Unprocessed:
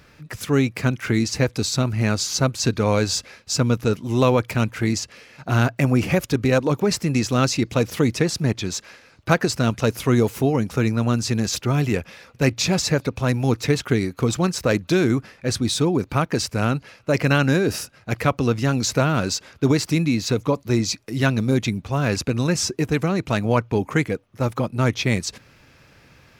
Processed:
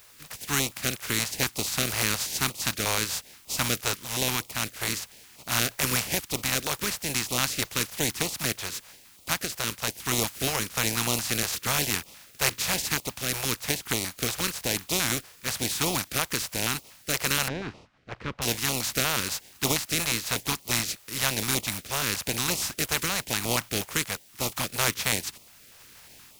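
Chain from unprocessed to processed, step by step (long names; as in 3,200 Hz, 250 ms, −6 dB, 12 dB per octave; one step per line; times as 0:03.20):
compressing power law on the bin magnitudes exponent 0.31
automatic gain control gain up to 6.5 dB
in parallel at −10.5 dB: bit-depth reduction 6 bits, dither triangular
0:17.48–0:18.42: on the sum: head-to-tape spacing loss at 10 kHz 40 dB
notch on a step sequencer 8.4 Hz 250–1,600 Hz
level −8.5 dB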